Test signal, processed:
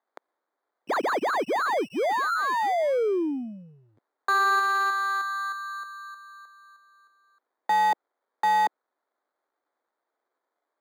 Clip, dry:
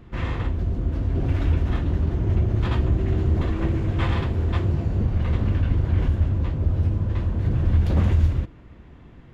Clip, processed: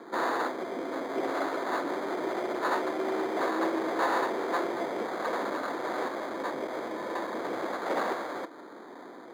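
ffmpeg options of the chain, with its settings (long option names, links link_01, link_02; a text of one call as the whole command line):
ffmpeg -i in.wav -filter_complex "[0:a]acrossover=split=510[link_01][link_02];[link_01]acompressor=threshold=-28dB:ratio=6[link_03];[link_02]acrusher=samples=16:mix=1:aa=0.000001[link_04];[link_03][link_04]amix=inputs=2:normalize=0,asplit=2[link_05][link_06];[link_06]highpass=frequency=720:poles=1,volume=19dB,asoftclip=type=tanh:threshold=-17dB[link_07];[link_05][link_07]amix=inputs=2:normalize=0,lowpass=frequency=1000:poles=1,volume=-6dB,highpass=frequency=290:width=0.5412,highpass=frequency=290:width=1.3066,volume=2.5dB" out.wav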